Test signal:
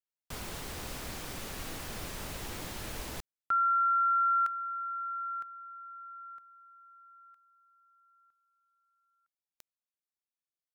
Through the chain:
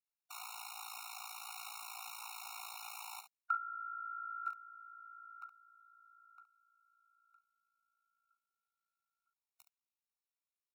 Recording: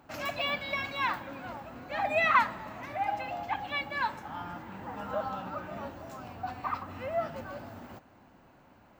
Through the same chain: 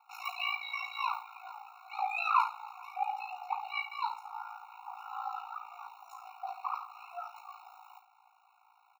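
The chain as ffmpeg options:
ffmpeg -i in.wav -af "aecho=1:1:15|42|69:0.355|0.251|0.282,aeval=exprs='val(0)*sin(2*PI*28*n/s)':channel_layout=same,afftfilt=real='re*eq(mod(floor(b*sr/1024/730),2),1)':imag='im*eq(mod(floor(b*sr/1024/730),2),1)':win_size=1024:overlap=0.75" out.wav

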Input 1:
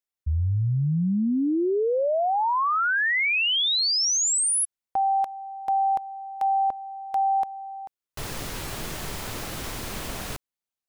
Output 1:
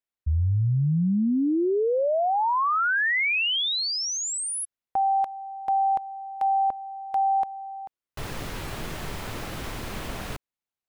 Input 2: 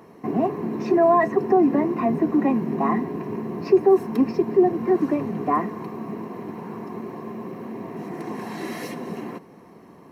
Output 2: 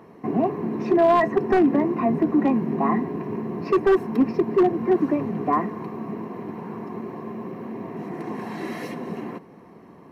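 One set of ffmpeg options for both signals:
ffmpeg -i in.wav -af "aeval=exprs='0.266*(abs(mod(val(0)/0.266+3,4)-2)-1)':channel_layout=same,bass=frequency=250:gain=1,treble=frequency=4000:gain=-7" out.wav

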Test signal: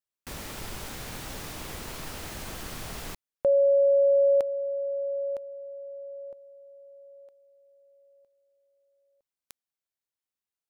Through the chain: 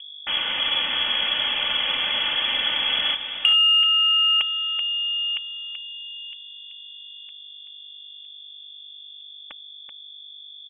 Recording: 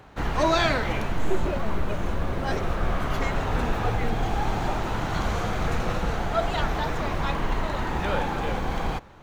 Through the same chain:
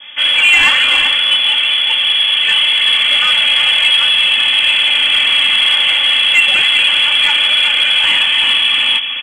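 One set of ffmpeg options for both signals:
ffmpeg -i in.wav -filter_complex "[0:a]afreqshift=210,adynamicequalizer=threshold=0.0224:dfrequency=740:dqfactor=0.89:tfrequency=740:tqfactor=0.89:attack=5:release=100:ratio=0.375:range=1.5:mode=boostabove:tftype=bell,aeval=exprs='val(0)+0.00891*(sin(2*PI*50*n/s)+sin(2*PI*2*50*n/s)/2+sin(2*PI*3*50*n/s)/3+sin(2*PI*4*50*n/s)/4+sin(2*PI*5*50*n/s)/5)':channel_layout=same,acrossover=split=850[link_01][link_02];[link_01]alimiter=limit=-21dB:level=0:latency=1:release=11[link_03];[link_03][link_02]amix=inputs=2:normalize=0,highpass=200,aeval=exprs='0.335*sin(PI/2*1.58*val(0)/0.335)':channel_layout=same,equalizer=frequency=380:width=1.7:gain=3,aecho=1:1:3.3:0.67,aecho=1:1:382:0.376,lowpass=frequency=3100:width_type=q:width=0.5098,lowpass=frequency=3100:width_type=q:width=0.6013,lowpass=frequency=3100:width_type=q:width=0.9,lowpass=frequency=3100:width_type=q:width=2.563,afreqshift=-3600,acontrast=43,volume=-1dB" out.wav

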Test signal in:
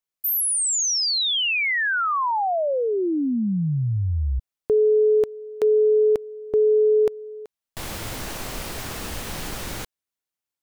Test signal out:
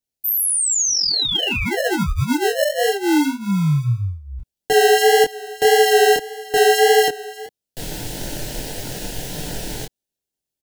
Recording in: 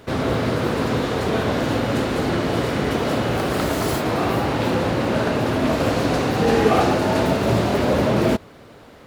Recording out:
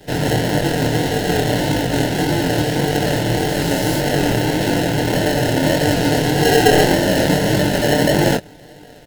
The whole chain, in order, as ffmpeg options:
ffmpeg -i in.wav -filter_complex "[0:a]aecho=1:1:6.5:0.82,acrossover=split=180|2400[link_01][link_02][link_03];[link_02]acrusher=samples=37:mix=1:aa=0.000001[link_04];[link_01][link_04][link_03]amix=inputs=3:normalize=0,flanger=delay=20:depth=6.8:speed=1.7,volume=4.5dB" out.wav

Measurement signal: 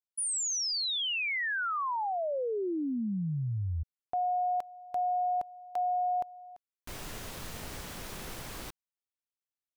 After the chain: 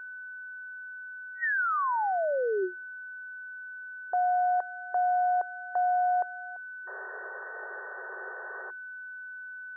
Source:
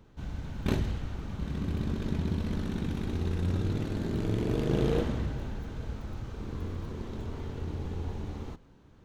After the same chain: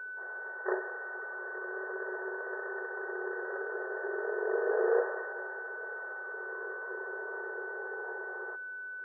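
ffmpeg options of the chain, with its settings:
ffmpeg -i in.wav -af "aeval=exprs='val(0)+0.00708*sin(2*PI*1500*n/s)':channel_layout=same,afftfilt=real='re*between(b*sr/4096,360,1900)':imag='im*between(b*sr/4096,360,1900)':win_size=4096:overlap=0.75,volume=4dB" out.wav

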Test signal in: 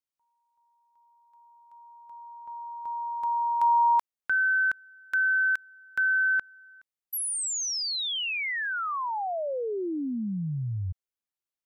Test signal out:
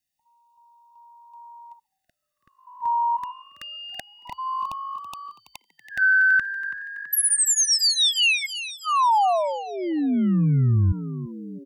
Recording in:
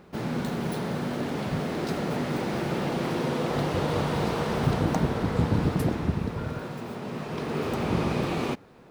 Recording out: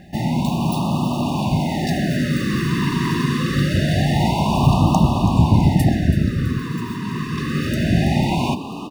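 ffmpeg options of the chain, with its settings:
ffmpeg -i in.wav -filter_complex "[0:a]aecho=1:1:1.1:0.96,acontrast=77,asplit=7[link_01][link_02][link_03][link_04][link_05][link_06][link_07];[link_02]adelay=329,afreqshift=50,volume=-13dB[link_08];[link_03]adelay=658,afreqshift=100,volume=-18.4dB[link_09];[link_04]adelay=987,afreqshift=150,volume=-23.7dB[link_10];[link_05]adelay=1316,afreqshift=200,volume=-29.1dB[link_11];[link_06]adelay=1645,afreqshift=250,volume=-34.4dB[link_12];[link_07]adelay=1974,afreqshift=300,volume=-39.8dB[link_13];[link_01][link_08][link_09][link_10][link_11][link_12][link_13]amix=inputs=7:normalize=0,afftfilt=real='re*(1-between(b*sr/1024,660*pow(1800/660,0.5+0.5*sin(2*PI*0.25*pts/sr))/1.41,660*pow(1800/660,0.5+0.5*sin(2*PI*0.25*pts/sr))*1.41))':imag='im*(1-between(b*sr/1024,660*pow(1800/660,0.5+0.5*sin(2*PI*0.25*pts/sr))/1.41,660*pow(1800/660,0.5+0.5*sin(2*PI*0.25*pts/sr))*1.41))':win_size=1024:overlap=0.75" out.wav

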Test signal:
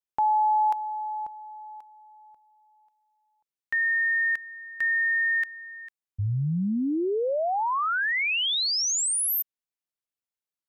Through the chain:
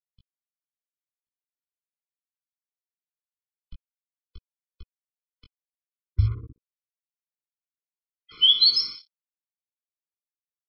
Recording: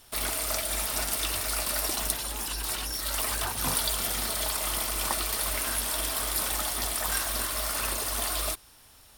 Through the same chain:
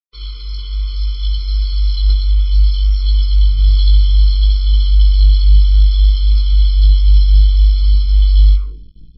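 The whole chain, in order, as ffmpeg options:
ffmpeg -i in.wav -af "aecho=1:1:61|122|183|244|305|366:0.224|0.13|0.0753|0.0437|0.0253|0.0147,asubboost=boost=11:cutoff=70,dynaudnorm=framelen=140:gausssize=17:maxgain=4dB,afftfilt=real='re*(1-between(b*sr/4096,110,2600))':imag='im*(1-between(b*sr/4096,110,2600))':win_size=4096:overlap=0.75,adynamicequalizer=threshold=0.00501:dfrequency=260:dqfactor=2:tfrequency=260:tqfactor=2:attack=5:release=100:ratio=0.417:range=2:mode=cutabove:tftype=bell,afftdn=noise_reduction=12:noise_floor=-41,bandreject=frequency=60:width_type=h:width=6,bandreject=frequency=120:width_type=h:width=6,bandreject=frequency=180:width_type=h:width=6,bandreject=frequency=240:width_type=h:width=6,bandreject=frequency=300:width_type=h:width=6,aecho=1:1:3.9:0.93,acontrast=20,aresample=11025,acrusher=bits=5:mix=0:aa=0.5,aresample=44100,flanger=delay=15.5:depth=4.7:speed=0.62,afftfilt=real='re*eq(mod(floor(b*sr/1024/500),2),0)':imag='im*eq(mod(floor(b*sr/1024/500),2),0)':win_size=1024:overlap=0.75,volume=2dB" out.wav

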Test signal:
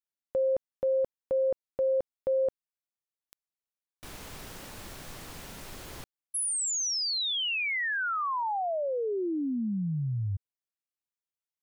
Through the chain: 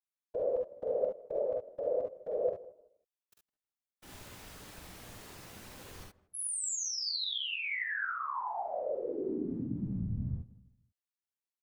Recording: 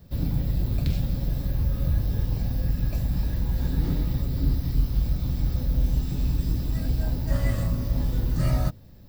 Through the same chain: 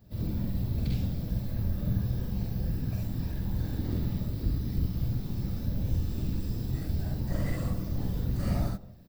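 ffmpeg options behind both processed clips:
ffmpeg -i in.wav -filter_complex "[0:a]asplit=2[link_01][link_02];[link_02]adelay=160,lowpass=frequency=1100:poles=1,volume=-18dB,asplit=2[link_03][link_04];[link_04]adelay=160,lowpass=frequency=1100:poles=1,volume=0.35,asplit=2[link_05][link_06];[link_06]adelay=160,lowpass=frequency=1100:poles=1,volume=0.35[link_07];[link_03][link_05][link_07]amix=inputs=3:normalize=0[link_08];[link_01][link_08]amix=inputs=2:normalize=0,afftfilt=real='hypot(re,im)*cos(2*PI*random(0))':imag='hypot(re,im)*sin(2*PI*random(1))':win_size=512:overlap=0.75,asplit=2[link_09][link_10];[link_10]aecho=0:1:47|63|73:0.631|0.562|0.473[link_11];[link_09][link_11]amix=inputs=2:normalize=0,volume=-2.5dB" out.wav

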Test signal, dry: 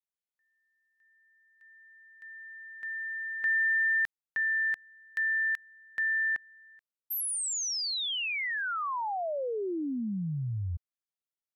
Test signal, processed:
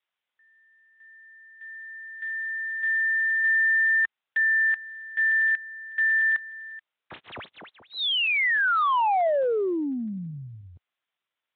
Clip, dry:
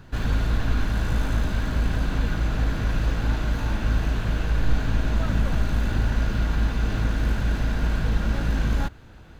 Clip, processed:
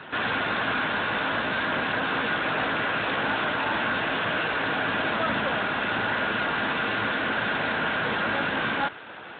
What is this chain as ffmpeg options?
ffmpeg -i in.wav -filter_complex "[0:a]aemphasis=mode=production:type=bsi,asplit=2[link_01][link_02];[link_02]highpass=frequency=720:poles=1,volume=24dB,asoftclip=type=tanh:threshold=-13dB[link_03];[link_01][link_03]amix=inputs=2:normalize=0,lowpass=frequency=2300:poles=1,volume=-6dB,volume=-1dB" -ar 8000 -c:a libspeex -b:a 18k out.spx

